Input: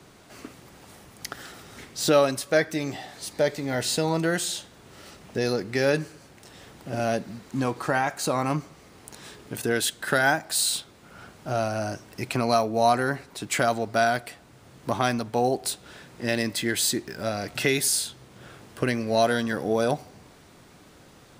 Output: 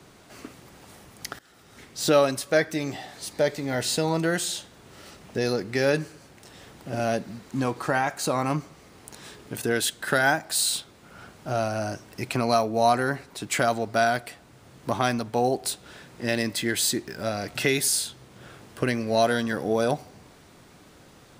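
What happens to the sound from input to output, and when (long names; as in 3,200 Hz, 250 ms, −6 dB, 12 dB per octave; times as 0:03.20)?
0:01.39–0:02.12: fade in linear, from −21.5 dB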